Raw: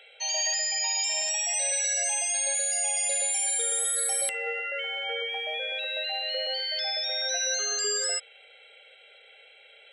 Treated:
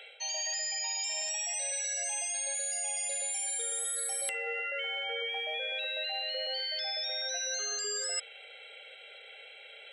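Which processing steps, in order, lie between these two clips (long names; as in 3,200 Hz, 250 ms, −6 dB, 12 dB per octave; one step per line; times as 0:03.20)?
high-pass filter 160 Hz 6 dB per octave
reversed playback
downward compressor 6 to 1, threshold −36 dBFS, peak gain reduction 11 dB
reversed playback
level +3.5 dB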